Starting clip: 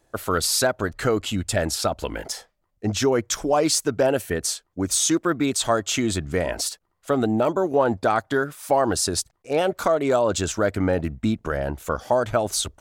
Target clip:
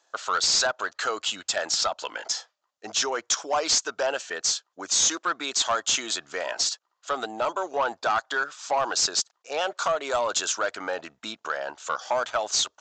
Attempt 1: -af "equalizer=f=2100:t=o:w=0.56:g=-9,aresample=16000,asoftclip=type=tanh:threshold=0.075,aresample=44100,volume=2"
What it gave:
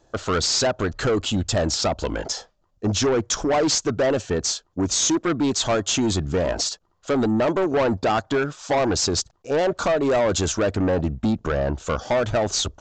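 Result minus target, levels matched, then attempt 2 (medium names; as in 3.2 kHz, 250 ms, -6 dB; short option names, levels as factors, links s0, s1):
1 kHz band -3.0 dB
-af "highpass=1100,equalizer=f=2100:t=o:w=0.56:g=-9,aresample=16000,asoftclip=type=tanh:threshold=0.075,aresample=44100,volume=2"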